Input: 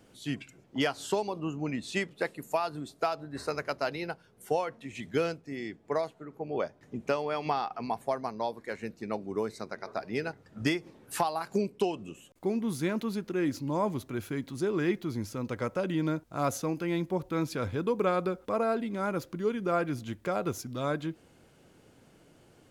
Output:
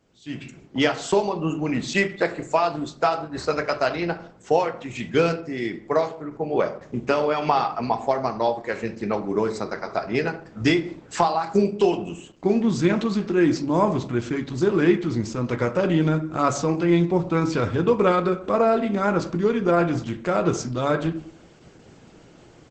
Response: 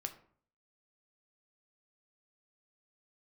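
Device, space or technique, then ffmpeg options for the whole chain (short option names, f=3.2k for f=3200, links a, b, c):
speakerphone in a meeting room: -filter_complex "[0:a]asettb=1/sr,asplit=3[a][b][c];[a]atrim=end=1.664[d];[b]atrim=start=1.66:end=2.74,asetpts=PTS-STARTPTS,afade=t=in:d=0.004:c=qsin,afade=t=out:st=1.076:d=0.004:c=qsin,bandreject=f=183.7:t=h:w=4,bandreject=f=367.4:t=h:w=4,bandreject=f=551.1:t=h:w=4,bandreject=f=734.8:t=h:w=4,bandreject=f=918.5:t=h:w=4,bandreject=f=1.1022k:t=h:w=4,bandreject=f=1.2859k:t=h:w=4,bandreject=f=1.4696k:t=h:w=4[e];[c]atrim=start=2.736[f];[d][e]acrossfade=d=0.004:c1=hsin:c2=qsin[g];[g][f]acrossfade=d=0.004:c1=qsin:c2=hsin[h];[1:a]atrim=start_sample=2205[i];[h][i]afir=irnorm=-1:irlink=0,asplit=2[j][k];[k]adelay=170,highpass=300,lowpass=3.4k,asoftclip=type=hard:threshold=-25dB,volume=-28dB[l];[j][l]amix=inputs=2:normalize=0,dynaudnorm=f=270:g=3:m=16dB,volume=-3.5dB" -ar 48000 -c:a libopus -b:a 12k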